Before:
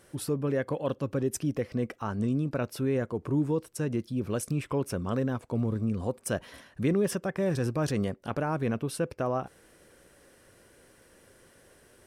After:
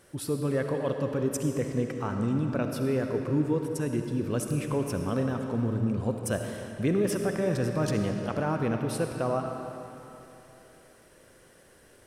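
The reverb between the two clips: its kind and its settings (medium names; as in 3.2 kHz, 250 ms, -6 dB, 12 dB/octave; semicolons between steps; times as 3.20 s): algorithmic reverb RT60 3.1 s, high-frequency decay 0.85×, pre-delay 25 ms, DRR 4 dB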